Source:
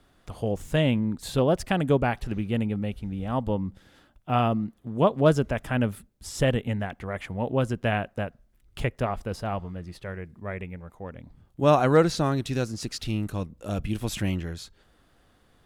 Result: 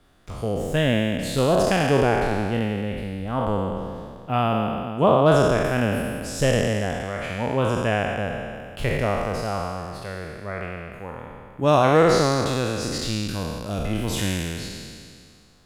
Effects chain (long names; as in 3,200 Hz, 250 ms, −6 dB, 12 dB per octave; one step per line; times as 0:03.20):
peak hold with a decay on every bin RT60 2.16 s